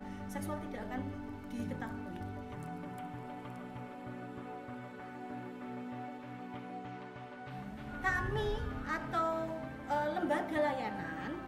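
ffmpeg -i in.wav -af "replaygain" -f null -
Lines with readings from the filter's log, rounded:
track_gain = +18.5 dB
track_peak = 0.069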